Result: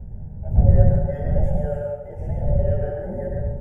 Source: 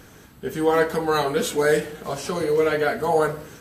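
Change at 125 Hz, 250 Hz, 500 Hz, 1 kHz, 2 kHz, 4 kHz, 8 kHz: +15.0 dB, −1.0 dB, −6.0 dB, −13.0 dB, −20.0 dB, below −30 dB, below −30 dB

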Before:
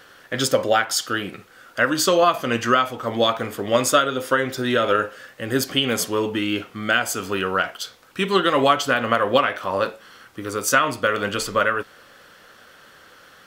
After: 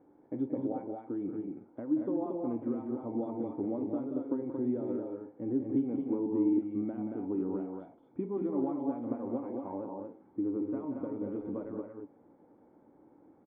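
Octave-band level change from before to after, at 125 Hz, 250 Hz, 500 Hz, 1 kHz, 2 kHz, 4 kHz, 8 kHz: −13.0 dB, −4.0 dB, −15.5 dB, −24.5 dB, below −40 dB, below −40 dB, below −40 dB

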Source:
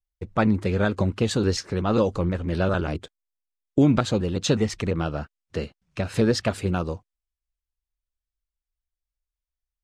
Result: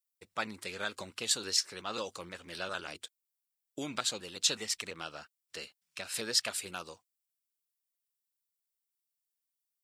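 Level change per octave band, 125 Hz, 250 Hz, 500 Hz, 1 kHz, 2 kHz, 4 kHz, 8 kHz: −29.5, −23.5, −17.5, −11.0, −6.5, +1.0, +3.0 decibels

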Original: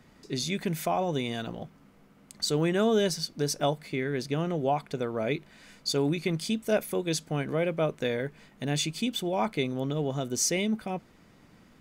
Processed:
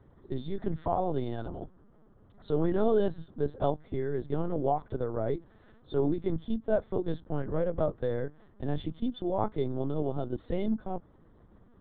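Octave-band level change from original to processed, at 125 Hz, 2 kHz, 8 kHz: −2.5 dB, −13.0 dB, below −40 dB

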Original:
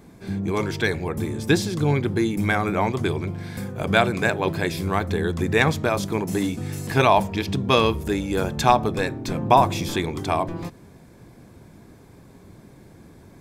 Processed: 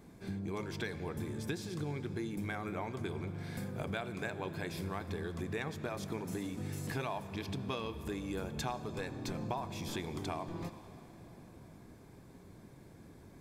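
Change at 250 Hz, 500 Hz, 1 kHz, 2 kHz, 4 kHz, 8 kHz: −15.0, −17.5, −20.5, −18.0, −17.0, −14.0 decibels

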